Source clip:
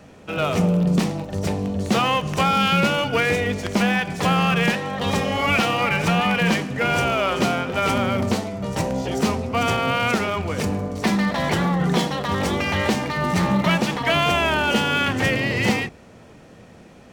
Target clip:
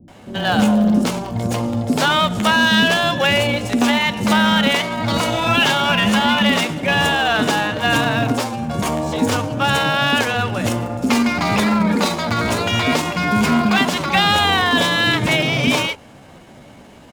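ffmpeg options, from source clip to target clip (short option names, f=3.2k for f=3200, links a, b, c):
-filter_complex "[0:a]asetrate=52444,aresample=44100,atempo=0.840896,acrossover=split=370[a][b];[b]adelay=80[c];[a][c]amix=inputs=2:normalize=0,volume=4.5dB"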